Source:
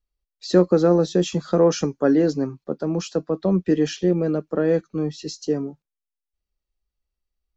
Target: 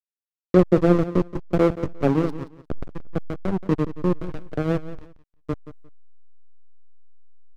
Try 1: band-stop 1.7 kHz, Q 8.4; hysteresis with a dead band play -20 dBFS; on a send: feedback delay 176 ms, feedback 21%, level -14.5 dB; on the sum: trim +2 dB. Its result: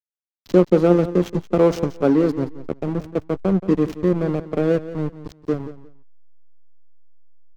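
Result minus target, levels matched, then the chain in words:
hysteresis with a dead band: distortion -10 dB
band-stop 1.7 kHz, Q 8.4; hysteresis with a dead band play -10.5 dBFS; on a send: feedback delay 176 ms, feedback 21%, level -14.5 dB; on the sum: trim +2 dB

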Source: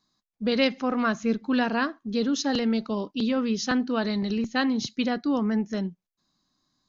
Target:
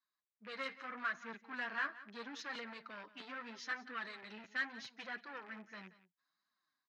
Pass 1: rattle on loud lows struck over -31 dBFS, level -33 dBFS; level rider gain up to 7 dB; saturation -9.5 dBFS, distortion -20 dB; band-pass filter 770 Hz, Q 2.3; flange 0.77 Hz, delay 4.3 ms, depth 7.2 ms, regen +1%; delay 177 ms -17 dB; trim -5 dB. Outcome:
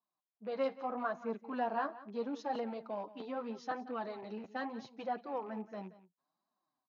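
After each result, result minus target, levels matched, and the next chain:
2 kHz band -11.5 dB; saturation: distortion -10 dB
rattle on loud lows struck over -31 dBFS, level -33 dBFS; level rider gain up to 7 dB; saturation -9.5 dBFS, distortion -20 dB; band-pass filter 1.7 kHz, Q 2.3; flange 0.77 Hz, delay 4.3 ms, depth 7.2 ms, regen +1%; delay 177 ms -17 dB; trim -5 dB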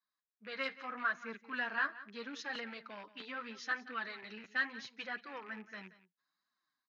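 saturation: distortion -10 dB
rattle on loud lows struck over -31 dBFS, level -33 dBFS; level rider gain up to 7 dB; saturation -18.5 dBFS, distortion -10 dB; band-pass filter 1.7 kHz, Q 2.3; flange 0.77 Hz, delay 4.3 ms, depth 7.2 ms, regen +1%; delay 177 ms -17 dB; trim -5 dB

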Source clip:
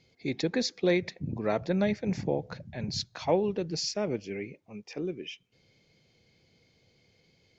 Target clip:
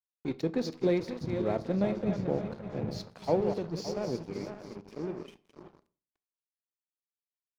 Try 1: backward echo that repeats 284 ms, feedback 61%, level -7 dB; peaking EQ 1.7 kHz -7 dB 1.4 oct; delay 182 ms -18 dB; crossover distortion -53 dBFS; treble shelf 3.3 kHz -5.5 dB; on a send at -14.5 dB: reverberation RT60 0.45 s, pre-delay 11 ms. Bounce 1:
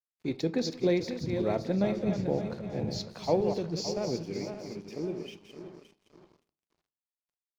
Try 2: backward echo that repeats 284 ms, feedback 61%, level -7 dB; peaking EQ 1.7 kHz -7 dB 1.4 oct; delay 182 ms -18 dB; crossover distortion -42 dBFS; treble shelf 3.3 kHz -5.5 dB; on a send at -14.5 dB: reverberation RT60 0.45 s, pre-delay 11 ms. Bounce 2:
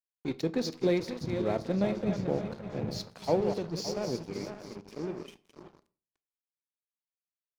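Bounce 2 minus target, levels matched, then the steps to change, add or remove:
8 kHz band +5.5 dB
change: treble shelf 3.3 kHz -13 dB

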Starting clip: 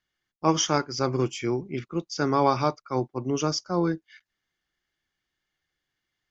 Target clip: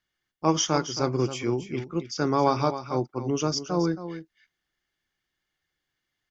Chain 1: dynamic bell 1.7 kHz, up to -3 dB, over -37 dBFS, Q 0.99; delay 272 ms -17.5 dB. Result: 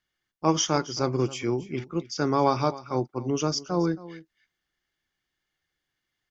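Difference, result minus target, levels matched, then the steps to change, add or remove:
echo-to-direct -6 dB
change: delay 272 ms -11.5 dB

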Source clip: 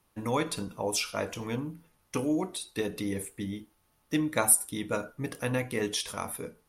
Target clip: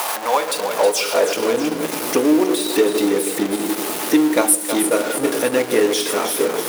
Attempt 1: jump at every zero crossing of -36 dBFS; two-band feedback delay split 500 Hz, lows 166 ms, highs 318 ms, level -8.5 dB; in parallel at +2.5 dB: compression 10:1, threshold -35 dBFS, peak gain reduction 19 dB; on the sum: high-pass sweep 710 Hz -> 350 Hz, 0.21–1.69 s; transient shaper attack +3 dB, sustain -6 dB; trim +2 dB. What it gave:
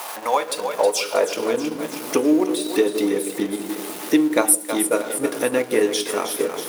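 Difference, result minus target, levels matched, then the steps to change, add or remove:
jump at every zero crossing: distortion -8 dB
change: jump at every zero crossing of -24.5 dBFS

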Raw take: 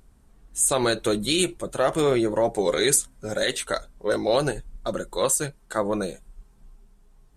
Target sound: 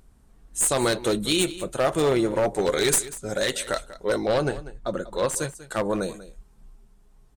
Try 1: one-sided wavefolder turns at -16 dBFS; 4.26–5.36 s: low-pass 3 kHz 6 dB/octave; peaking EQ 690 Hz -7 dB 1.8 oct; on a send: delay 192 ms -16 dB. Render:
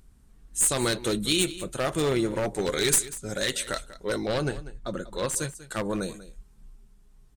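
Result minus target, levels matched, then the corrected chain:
500 Hz band -3.0 dB
one-sided wavefolder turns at -16 dBFS; 4.26–5.36 s: low-pass 3 kHz 6 dB/octave; on a send: delay 192 ms -16 dB

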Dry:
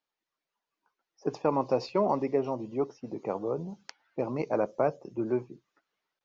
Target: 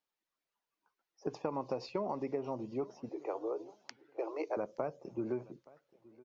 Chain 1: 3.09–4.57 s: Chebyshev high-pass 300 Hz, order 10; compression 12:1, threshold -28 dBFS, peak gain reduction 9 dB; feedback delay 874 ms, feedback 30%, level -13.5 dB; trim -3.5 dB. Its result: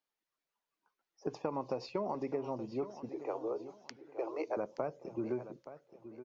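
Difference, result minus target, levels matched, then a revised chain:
echo-to-direct +9.5 dB
3.09–4.57 s: Chebyshev high-pass 300 Hz, order 10; compression 12:1, threshold -28 dBFS, peak gain reduction 9 dB; feedback delay 874 ms, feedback 30%, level -23 dB; trim -3.5 dB

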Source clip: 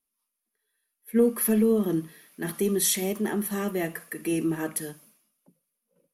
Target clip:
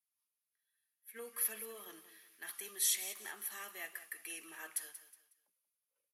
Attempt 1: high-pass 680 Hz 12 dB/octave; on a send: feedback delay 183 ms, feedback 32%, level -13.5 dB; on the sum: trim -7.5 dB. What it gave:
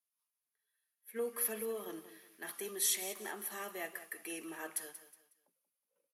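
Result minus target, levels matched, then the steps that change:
500 Hz band +11.0 dB
change: high-pass 1.4 kHz 12 dB/octave

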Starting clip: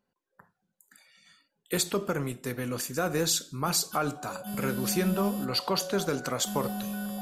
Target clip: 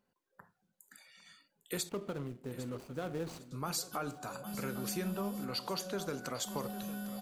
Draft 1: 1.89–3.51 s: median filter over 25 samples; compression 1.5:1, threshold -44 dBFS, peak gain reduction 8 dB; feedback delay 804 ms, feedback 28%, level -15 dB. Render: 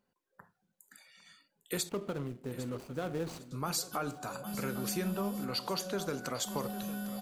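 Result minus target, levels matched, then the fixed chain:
compression: peak gain reduction -2.5 dB
1.89–3.51 s: median filter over 25 samples; compression 1.5:1, threshold -51.5 dBFS, peak gain reduction 10.5 dB; feedback delay 804 ms, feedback 28%, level -15 dB

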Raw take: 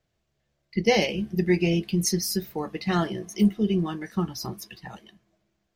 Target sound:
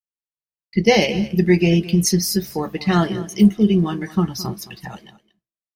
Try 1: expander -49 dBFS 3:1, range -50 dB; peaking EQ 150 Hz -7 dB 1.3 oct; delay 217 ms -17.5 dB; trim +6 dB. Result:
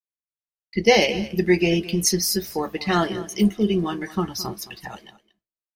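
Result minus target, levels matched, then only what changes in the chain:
125 Hz band -4.5 dB
change: peaking EQ 150 Hz +2.5 dB 1.3 oct

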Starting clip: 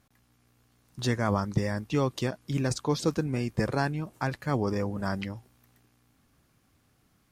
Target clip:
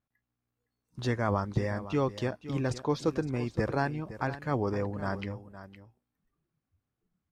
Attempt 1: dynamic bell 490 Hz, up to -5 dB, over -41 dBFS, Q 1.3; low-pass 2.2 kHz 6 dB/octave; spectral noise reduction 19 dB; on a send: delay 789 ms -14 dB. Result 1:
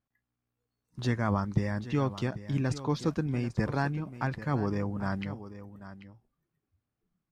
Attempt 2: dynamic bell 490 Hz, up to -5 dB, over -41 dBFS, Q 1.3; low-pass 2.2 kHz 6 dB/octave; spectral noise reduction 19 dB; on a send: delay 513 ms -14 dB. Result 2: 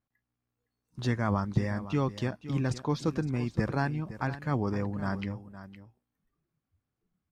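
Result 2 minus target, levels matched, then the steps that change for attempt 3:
500 Hz band -4.0 dB
change: dynamic bell 180 Hz, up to -5 dB, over -41 dBFS, Q 1.3

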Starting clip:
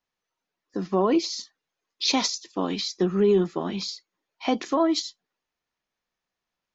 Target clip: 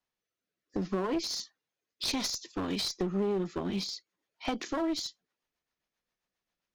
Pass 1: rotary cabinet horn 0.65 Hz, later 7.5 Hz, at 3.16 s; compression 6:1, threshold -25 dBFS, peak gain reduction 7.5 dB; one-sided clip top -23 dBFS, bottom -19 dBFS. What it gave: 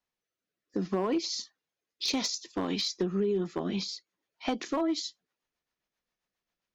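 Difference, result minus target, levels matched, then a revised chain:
one-sided clip: distortion -9 dB
rotary cabinet horn 0.65 Hz, later 7.5 Hz, at 3.16 s; compression 6:1, threshold -25 dBFS, peak gain reduction 7.5 dB; one-sided clip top -31.5 dBFS, bottom -19 dBFS

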